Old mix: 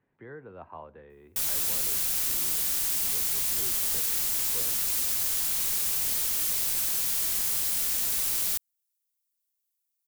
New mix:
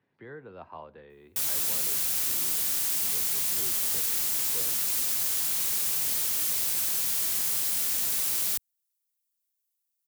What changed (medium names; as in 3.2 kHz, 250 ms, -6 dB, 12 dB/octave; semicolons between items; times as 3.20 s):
speech: remove low-pass 2.3 kHz 12 dB/octave; master: add high-pass 86 Hz 12 dB/octave